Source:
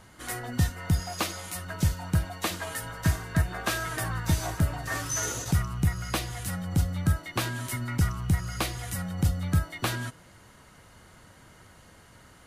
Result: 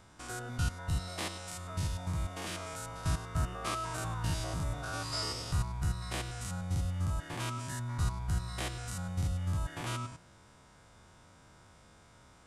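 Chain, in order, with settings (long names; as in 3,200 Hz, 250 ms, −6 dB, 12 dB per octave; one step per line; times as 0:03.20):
spectrum averaged block by block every 100 ms
formants moved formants −4 semitones
level −4 dB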